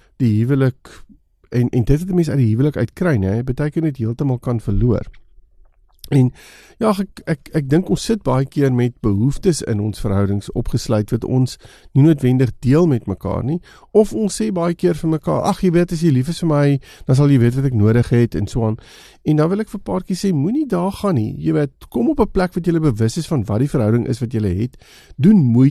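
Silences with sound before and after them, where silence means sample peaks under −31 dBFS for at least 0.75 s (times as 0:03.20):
0:05.09–0:06.04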